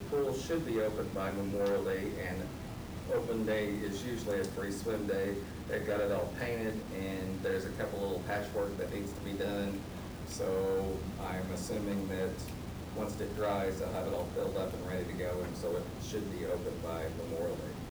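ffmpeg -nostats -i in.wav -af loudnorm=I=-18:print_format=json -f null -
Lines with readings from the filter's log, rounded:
"input_i" : "-36.6",
"input_tp" : "-26.5",
"input_lra" : "2.6",
"input_thresh" : "-46.6",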